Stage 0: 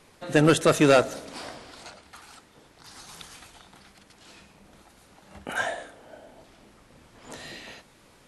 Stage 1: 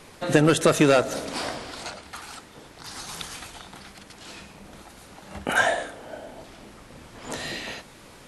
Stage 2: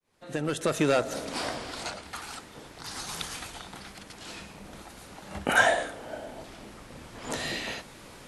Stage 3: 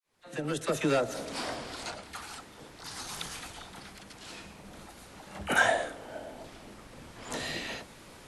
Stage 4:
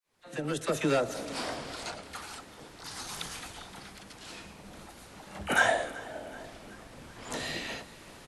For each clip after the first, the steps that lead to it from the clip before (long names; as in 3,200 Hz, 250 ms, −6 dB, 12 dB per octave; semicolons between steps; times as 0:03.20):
downward compressor 6 to 1, threshold −23 dBFS, peak gain reduction 9.5 dB; level +8.5 dB
fade in at the beginning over 1.81 s
all-pass dispersion lows, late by 46 ms, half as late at 650 Hz; level −3 dB
repeating echo 378 ms, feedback 54%, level −20 dB